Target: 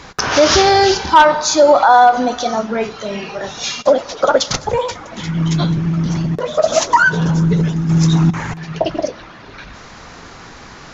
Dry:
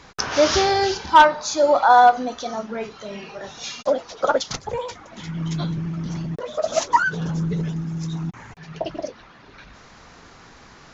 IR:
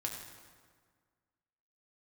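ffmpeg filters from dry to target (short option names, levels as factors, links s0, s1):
-filter_complex "[0:a]asettb=1/sr,asplit=3[s0][s1][s2];[s0]atrim=end=7.894[s3];[s1]atrim=start=7.89:end=8.56,asetpts=PTS-STARTPTS,afade=t=in:d=0.004:c=qsin,afade=t=out:st=0.666:d=0.004:c=qsin,acontrast=64[s4];[s2]atrim=start=8.556[s5];[s3][s4]acrossfade=d=0.004:c1=hsin:c2=qsin[s6];[s6][s5]acrossfade=d=0.004:c1=qsin:c2=hsin,asplit=2[s7][s8];[1:a]atrim=start_sample=2205[s9];[s8][s9]afir=irnorm=-1:irlink=0,volume=0.141[s10];[s7][s10]amix=inputs=2:normalize=0,alimiter=level_in=3.16:limit=0.891:release=50:level=0:latency=1,volume=0.891"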